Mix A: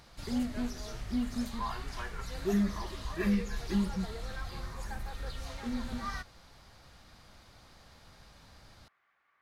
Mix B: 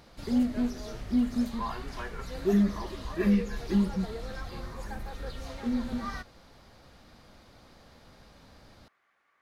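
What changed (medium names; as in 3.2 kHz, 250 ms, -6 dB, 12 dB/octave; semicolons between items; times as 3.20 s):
speech: remove distance through air 160 m; master: add ten-band graphic EQ 250 Hz +6 dB, 500 Hz +5 dB, 8 kHz -3 dB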